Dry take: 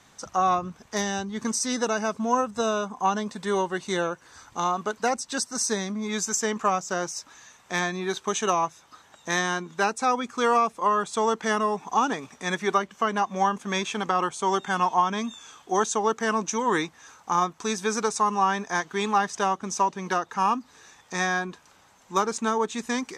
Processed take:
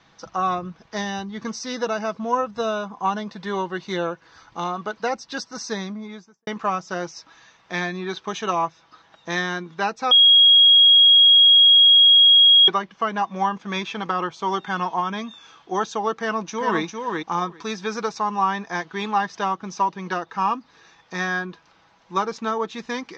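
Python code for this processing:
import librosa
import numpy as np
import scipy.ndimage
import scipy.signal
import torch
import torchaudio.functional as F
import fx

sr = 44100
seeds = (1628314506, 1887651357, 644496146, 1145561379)

y = fx.studio_fade_out(x, sr, start_s=5.77, length_s=0.7)
y = fx.echo_throw(y, sr, start_s=16.17, length_s=0.65, ms=400, feedback_pct=10, wet_db=-4.0)
y = fx.edit(y, sr, fx.bleep(start_s=10.11, length_s=2.57, hz=3290.0, db=-11.5), tone=tone)
y = scipy.signal.sosfilt(scipy.signal.butter(6, 5300.0, 'lowpass', fs=sr, output='sos'), y)
y = y + 0.35 * np.pad(y, (int(6.1 * sr / 1000.0), 0))[:len(y)]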